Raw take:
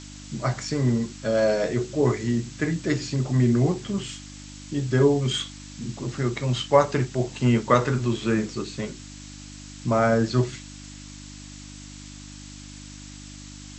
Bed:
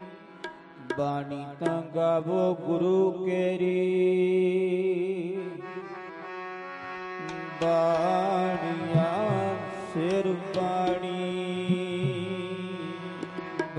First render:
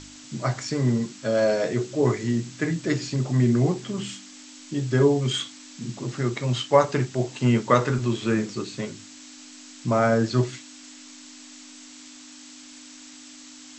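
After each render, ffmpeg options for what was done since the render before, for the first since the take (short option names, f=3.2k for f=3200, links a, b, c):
-af "bandreject=f=50:t=h:w=4,bandreject=f=100:t=h:w=4,bandreject=f=150:t=h:w=4,bandreject=f=200:t=h:w=4"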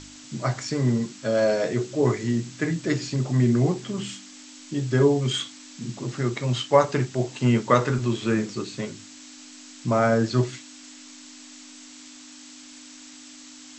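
-af anull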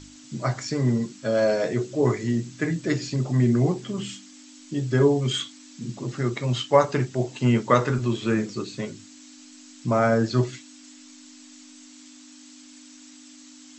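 -af "afftdn=nr=6:nf=-45"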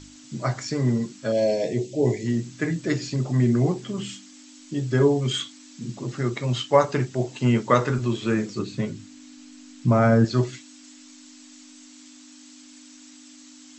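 -filter_complex "[0:a]asettb=1/sr,asplit=3[a][b][c];[a]atrim=end=1.324[d];[b]atrim=start=1.32:end=2.26,asetpts=PTS-STARTPTS,afade=t=in:d=0.004:c=qsin,afade=t=out:st=0.936:d=0.004:c=qsin,asuperstop=centerf=1300:order=4:qfactor=1[e];[c]atrim=start=2.256[f];[d][e]acrossfade=d=0.004:c1=hsin:c2=qsin[g];[g][f]acrossfade=d=0.004:c1=qsin:c2=hsin,asettb=1/sr,asplit=3[h][i][j];[h]atrim=end=8.594[k];[i]atrim=start=8.59:end=10.25,asetpts=PTS-STARTPTS,afade=t=in:d=0.004:c=qsin,afade=t=out:st=1.656:d=0.004:c=qsin,bass=f=250:g=8,treble=f=4k:g=-4[l];[j]atrim=start=10.246[m];[k][l]acrossfade=d=0.004:c1=hsin:c2=qsin[n];[n][m]acrossfade=d=0.004:c1=qsin:c2=hsin"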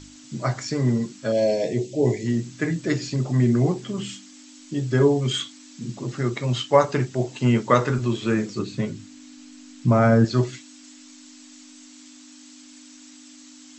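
-af "volume=1dB"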